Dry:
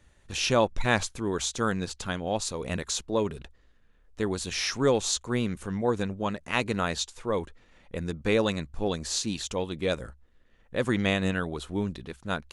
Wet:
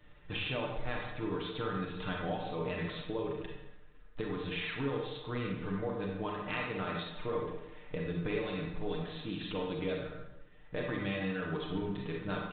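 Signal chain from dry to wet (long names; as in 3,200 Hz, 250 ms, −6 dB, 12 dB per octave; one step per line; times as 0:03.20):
comb filter 6.6 ms, depth 77%
downward compressor 10 to 1, threshold −34 dBFS, peak gain reduction 18.5 dB
convolution reverb RT60 1.0 s, pre-delay 28 ms, DRR −1 dB
level −1 dB
G.726 32 kbit/s 8,000 Hz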